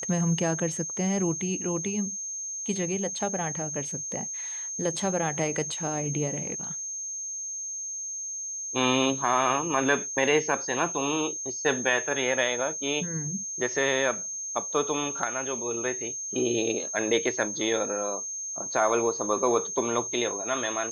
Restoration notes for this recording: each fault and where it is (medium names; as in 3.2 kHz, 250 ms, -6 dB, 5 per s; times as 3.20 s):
whine 6.4 kHz -32 dBFS